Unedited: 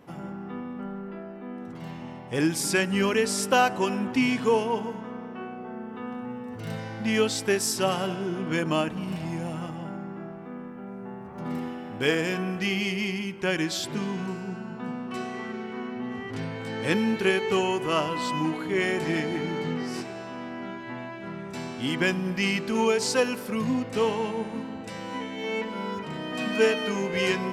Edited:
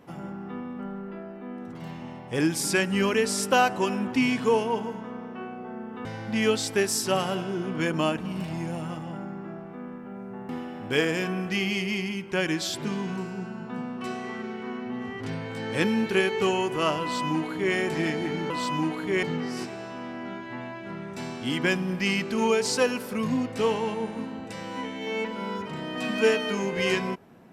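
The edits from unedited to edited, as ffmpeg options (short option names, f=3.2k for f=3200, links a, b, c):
-filter_complex "[0:a]asplit=5[a][b][c][d][e];[a]atrim=end=6.052[f];[b]atrim=start=6.768:end=11.212[g];[c]atrim=start=11.588:end=19.602[h];[d]atrim=start=18.118:end=18.852[i];[e]atrim=start=19.598[j];[f][g]acrossfade=d=0.004:c1=hsin:c2=hsin[k];[k][h]acrossfade=d=0.004:c1=hsin:c2=hsin[l];[l][i]acrossfade=d=0.004:c1=hsin:c2=hsin[m];[m][j]acrossfade=d=0.004:c1=hsin:c2=hsin"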